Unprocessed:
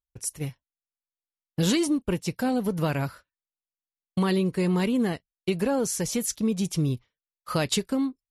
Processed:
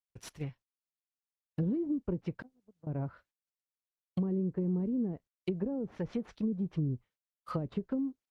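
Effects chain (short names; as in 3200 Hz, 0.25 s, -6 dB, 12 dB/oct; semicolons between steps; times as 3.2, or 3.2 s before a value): median filter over 5 samples; treble ducked by the level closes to 360 Hz, closed at -21 dBFS; 2.42–2.87 gate -21 dBFS, range -46 dB; gain -6.5 dB; Opus 48 kbps 48000 Hz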